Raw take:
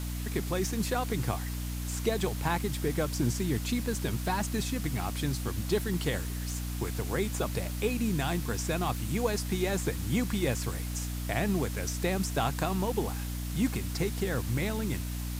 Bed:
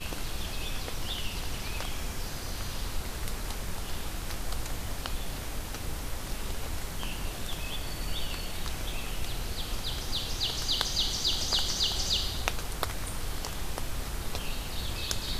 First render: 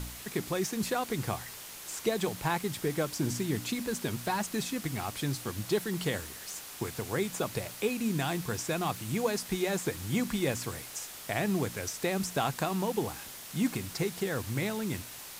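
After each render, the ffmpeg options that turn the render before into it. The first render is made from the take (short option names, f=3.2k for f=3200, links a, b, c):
-af "bandreject=f=60:t=h:w=4,bandreject=f=120:t=h:w=4,bandreject=f=180:t=h:w=4,bandreject=f=240:t=h:w=4,bandreject=f=300:t=h:w=4"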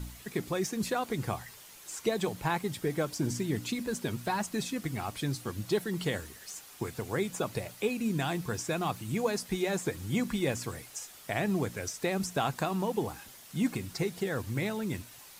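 -af "afftdn=nr=8:nf=-45"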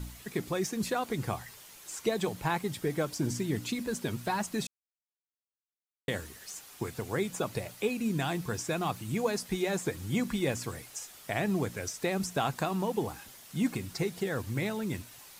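-filter_complex "[0:a]asplit=3[a][b][c];[a]atrim=end=4.67,asetpts=PTS-STARTPTS,afade=t=out:st=4.666:d=0.004:c=hsin[d];[b]atrim=start=4.67:end=6.08,asetpts=PTS-STARTPTS,volume=0[e];[c]atrim=start=6.08,asetpts=PTS-STARTPTS,afade=t=in:d=0.004:c=hsin[f];[d][e][f]concat=n=3:v=0:a=1"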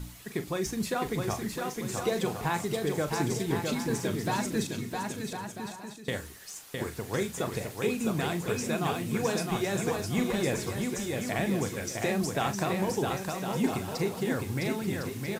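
-filter_complex "[0:a]asplit=2[a][b];[b]adelay=40,volume=-10.5dB[c];[a][c]amix=inputs=2:normalize=0,aecho=1:1:660|1056|1294|1436|1522:0.631|0.398|0.251|0.158|0.1"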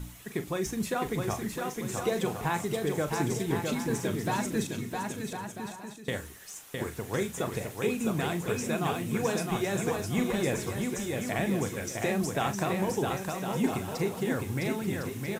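-af "equalizer=f=4.6k:t=o:w=0.4:g=-6"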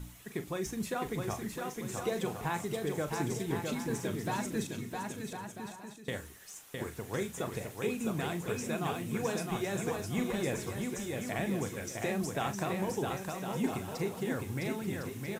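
-af "volume=-4.5dB"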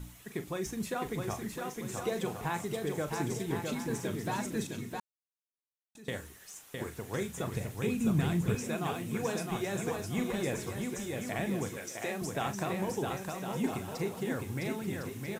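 -filter_complex "[0:a]asettb=1/sr,asplit=3[a][b][c];[a]atrim=end=7.094[d];[b]atrim=start=7.09:end=8.55,asetpts=PTS-STARTPTS,afade=t=in:d=0.004:c=qsin,afade=t=out:st=1.456:d=0.004:c=qsin,asubboost=boost=9:cutoff=250[e];[c]atrim=start=8.546[f];[d][e]acrossfade=d=0.004:c1=hsin:c2=qsin[g];[g][f]acrossfade=d=0.004:c1=qsin:c2=hsin,asettb=1/sr,asplit=3[h][i][j];[h]atrim=end=11.774[k];[i]atrim=start=11.77:end=12.22,asetpts=PTS-STARTPTS,afade=t=in:d=0.004:c=qsin,afade=t=out:st=0.446:d=0.004:c=qsin,highpass=f=400:p=1[l];[j]atrim=start=12.216[m];[k][l]acrossfade=d=0.004:c1=hsin:c2=qsin[n];[n][m]acrossfade=d=0.004:c1=qsin:c2=hsin,asplit=3[o][p][q];[o]atrim=end=5,asetpts=PTS-STARTPTS,afade=t=out:st=4.996:d=0.004:c=hsin[r];[p]atrim=start=5:end=5.95,asetpts=PTS-STARTPTS,volume=0[s];[q]atrim=start=5.95,asetpts=PTS-STARTPTS,afade=t=in:d=0.004:c=hsin[t];[r][s][t]concat=n=3:v=0:a=1"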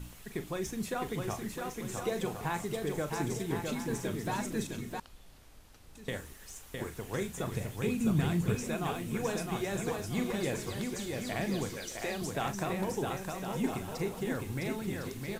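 -filter_complex "[1:a]volume=-21dB[a];[0:a][a]amix=inputs=2:normalize=0"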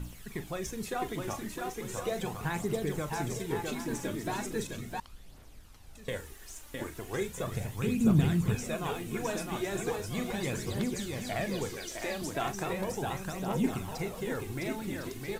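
-af "aphaser=in_gain=1:out_gain=1:delay=3.6:decay=0.43:speed=0.37:type=triangular"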